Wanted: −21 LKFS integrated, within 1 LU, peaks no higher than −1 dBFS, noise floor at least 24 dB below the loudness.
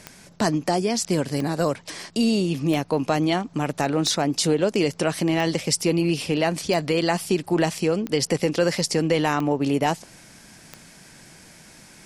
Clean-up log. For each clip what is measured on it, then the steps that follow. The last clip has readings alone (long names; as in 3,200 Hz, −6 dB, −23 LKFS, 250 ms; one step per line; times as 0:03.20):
number of clicks 9; integrated loudness −23.0 LKFS; sample peak −7.0 dBFS; target loudness −21.0 LKFS
→ click removal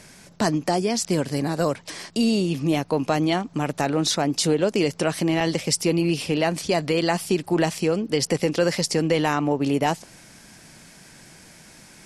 number of clicks 0; integrated loudness −23.0 LKFS; sample peak −7.0 dBFS; target loudness −21.0 LKFS
→ level +2 dB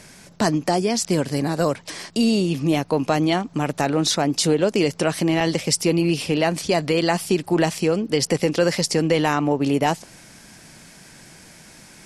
integrated loudness −21.0 LKFS; sample peak −5.0 dBFS; background noise floor −47 dBFS